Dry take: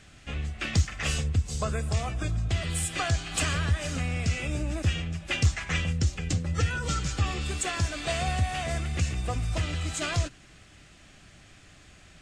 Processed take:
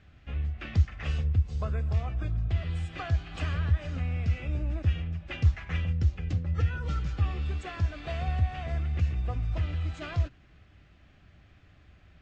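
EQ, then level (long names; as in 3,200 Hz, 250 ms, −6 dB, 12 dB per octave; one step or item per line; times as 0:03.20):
low-pass filter 3,600 Hz 6 dB per octave
high-frequency loss of the air 150 metres
parametric band 70 Hz +8.5 dB 1.2 octaves
−6.0 dB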